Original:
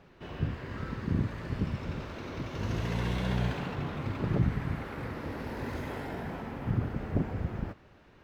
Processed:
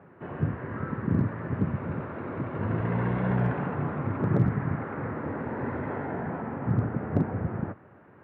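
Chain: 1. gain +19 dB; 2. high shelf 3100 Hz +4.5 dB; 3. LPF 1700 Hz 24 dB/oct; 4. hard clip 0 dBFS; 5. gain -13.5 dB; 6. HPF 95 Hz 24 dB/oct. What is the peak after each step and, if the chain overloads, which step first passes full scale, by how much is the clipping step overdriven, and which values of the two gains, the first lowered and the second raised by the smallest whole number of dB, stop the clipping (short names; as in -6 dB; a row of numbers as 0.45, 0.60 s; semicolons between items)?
+4.0, +4.0, +4.0, 0.0, -13.5, -10.5 dBFS; step 1, 4.0 dB; step 1 +15 dB, step 5 -9.5 dB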